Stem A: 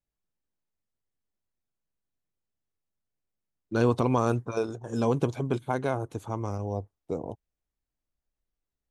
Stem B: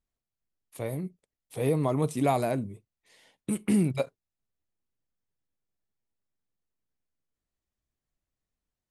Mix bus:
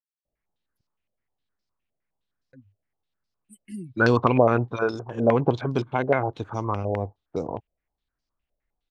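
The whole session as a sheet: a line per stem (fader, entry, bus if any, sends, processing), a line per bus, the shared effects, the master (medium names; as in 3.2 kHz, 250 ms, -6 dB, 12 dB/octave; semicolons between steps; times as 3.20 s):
+3.0 dB, 0.25 s, no send, step-sequenced low-pass 9.7 Hz 620–5000 Hz
-9.5 dB, 0.00 s, muted 0.81–2.53 s, no send, expander on every frequency bin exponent 3; expander -47 dBFS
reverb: none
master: none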